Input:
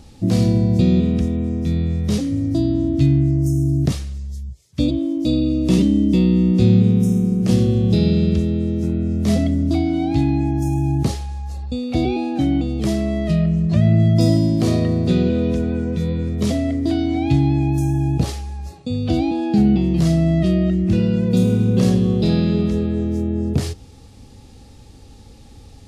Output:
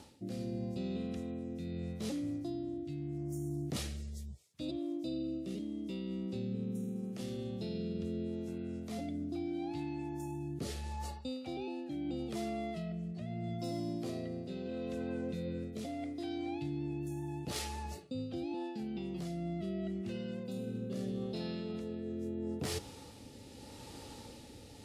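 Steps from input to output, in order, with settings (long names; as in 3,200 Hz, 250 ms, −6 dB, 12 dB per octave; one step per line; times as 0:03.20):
high-pass filter 400 Hz 6 dB per octave
parametric band 5,700 Hz −3.5 dB 0.77 octaves
reversed playback
downward compressor 20 to 1, threshold −37 dBFS, peak gain reduction 21 dB
reversed playback
rotating-speaker cabinet horn 0.75 Hz
in parallel at −8.5 dB: bit reduction 5 bits
on the sum: wrong playback speed 24 fps film run at 25 fps
level +3 dB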